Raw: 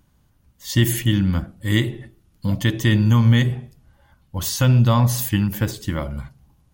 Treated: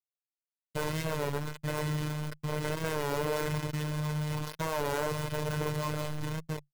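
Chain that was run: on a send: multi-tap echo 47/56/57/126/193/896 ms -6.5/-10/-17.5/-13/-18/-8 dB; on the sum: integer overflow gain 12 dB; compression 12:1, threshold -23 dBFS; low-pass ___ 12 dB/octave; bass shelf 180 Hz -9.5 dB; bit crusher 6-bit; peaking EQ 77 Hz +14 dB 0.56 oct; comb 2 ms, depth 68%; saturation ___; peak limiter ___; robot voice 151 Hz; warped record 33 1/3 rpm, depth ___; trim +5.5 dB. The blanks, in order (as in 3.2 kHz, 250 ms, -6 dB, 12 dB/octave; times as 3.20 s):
1.2 kHz, -24.5 dBFS, -30 dBFS, 100 cents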